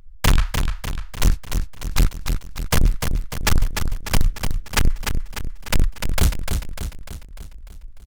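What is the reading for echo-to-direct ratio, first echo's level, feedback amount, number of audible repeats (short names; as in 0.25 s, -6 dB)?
-4.5 dB, -6.0 dB, 53%, 6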